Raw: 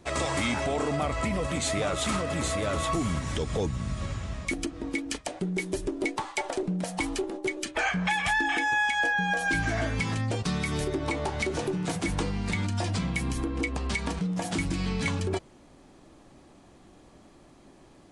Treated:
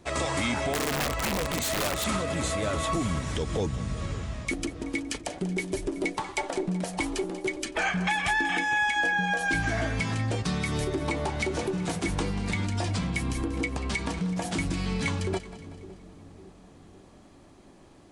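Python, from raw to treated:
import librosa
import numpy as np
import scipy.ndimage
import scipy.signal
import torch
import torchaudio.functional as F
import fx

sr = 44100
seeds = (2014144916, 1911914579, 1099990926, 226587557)

y = fx.echo_split(x, sr, split_hz=490.0, low_ms=557, high_ms=188, feedback_pct=52, wet_db=-14.5)
y = fx.overflow_wrap(y, sr, gain_db=21.5, at=(0.73, 2.04))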